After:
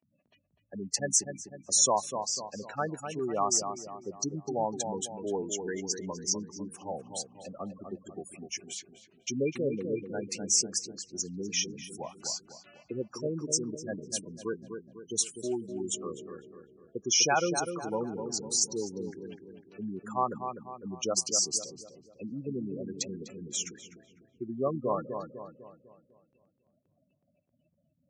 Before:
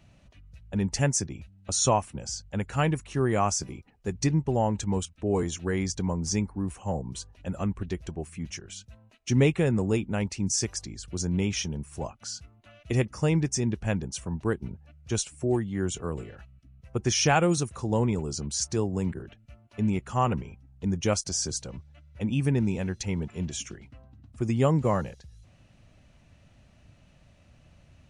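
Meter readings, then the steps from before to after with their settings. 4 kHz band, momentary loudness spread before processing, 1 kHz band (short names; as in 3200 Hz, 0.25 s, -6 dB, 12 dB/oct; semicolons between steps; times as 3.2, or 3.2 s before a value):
+1.0 dB, 14 LU, -2.5 dB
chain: spectral gate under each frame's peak -15 dB strong; gate with hold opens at -50 dBFS; HPF 240 Hz 12 dB/oct; tilt +2 dB/oct; on a send: darkening echo 0.25 s, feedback 48%, low-pass 1600 Hz, level -6.5 dB; on the sum: gain -2 dB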